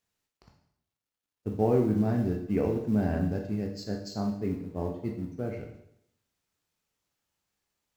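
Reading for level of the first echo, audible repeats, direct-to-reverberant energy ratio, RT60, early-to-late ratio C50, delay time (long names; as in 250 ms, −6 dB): no echo audible, no echo audible, 1.0 dB, 0.75 s, 6.0 dB, no echo audible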